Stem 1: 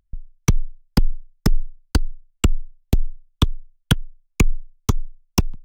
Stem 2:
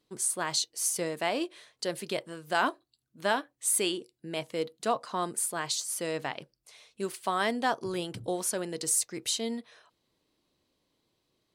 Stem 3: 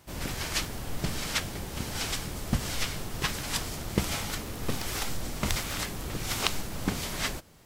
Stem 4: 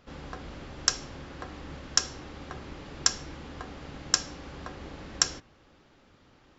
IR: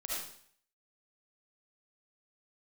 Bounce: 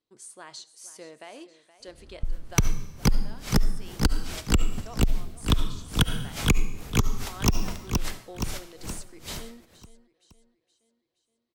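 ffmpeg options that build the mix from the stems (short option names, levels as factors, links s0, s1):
-filter_complex "[0:a]adelay=2100,volume=1.19,asplit=3[s0][s1][s2];[s1]volume=0.562[s3];[s2]volume=0.422[s4];[1:a]lowpass=8200,equalizer=f=170:w=4.3:g=-7,alimiter=limit=0.112:level=0:latency=1:release=214,volume=0.251,asplit=4[s5][s6][s7][s8];[s6]volume=0.1[s9];[s7]volume=0.178[s10];[2:a]aeval=exprs='val(0)*pow(10,-30*(0.5-0.5*cos(2*PI*2.4*n/s))/20)':c=same,adelay=2250,volume=0.841,asplit=2[s11][s12];[s12]volume=0.2[s13];[3:a]aemphasis=mode=reproduction:type=bsi,adelay=1800,volume=0.133,asplit=2[s14][s15];[s15]volume=0.447[s16];[s8]apad=whole_len=369630[s17];[s14][s17]sidechaincompress=threshold=0.00224:ratio=8:attack=16:release=213[s18];[4:a]atrim=start_sample=2205[s19];[s3][s9][s13][s16]amix=inputs=4:normalize=0[s20];[s20][s19]afir=irnorm=-1:irlink=0[s21];[s4][s10]amix=inputs=2:normalize=0,aecho=0:1:471|942|1413|1884|2355|2826:1|0.46|0.212|0.0973|0.0448|0.0206[s22];[s0][s5][s11][s18][s21][s22]amix=inputs=6:normalize=0,acompressor=threshold=0.0891:ratio=3"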